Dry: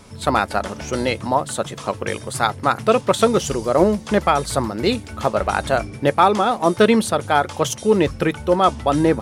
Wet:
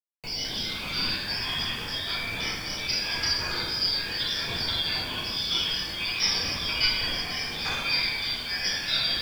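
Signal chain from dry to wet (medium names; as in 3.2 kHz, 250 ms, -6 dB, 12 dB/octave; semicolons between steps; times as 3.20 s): four frequency bands reordered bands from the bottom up 4321; level held to a coarse grid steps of 12 dB; tape spacing loss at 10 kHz 35 dB; two-band feedback delay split 2.6 kHz, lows 609 ms, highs 95 ms, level -15.5 dB; simulated room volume 420 m³, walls mixed, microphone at 4 m; gate with hold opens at -30 dBFS; peaking EQ 1.8 kHz -11 dB 0.29 oct; bit crusher 8-bit; ever faster or slower copies 112 ms, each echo -6 st, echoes 3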